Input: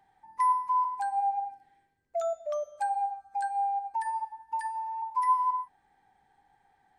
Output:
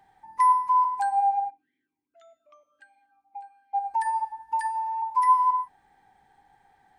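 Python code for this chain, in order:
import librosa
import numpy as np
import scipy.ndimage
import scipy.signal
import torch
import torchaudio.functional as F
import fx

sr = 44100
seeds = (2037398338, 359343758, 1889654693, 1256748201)

y = fx.vowel_sweep(x, sr, vowels='i-u', hz=fx.line((1.49, 2.3), (3.73, 1.0)), at=(1.49, 3.73), fade=0.02)
y = y * librosa.db_to_amplitude(5.5)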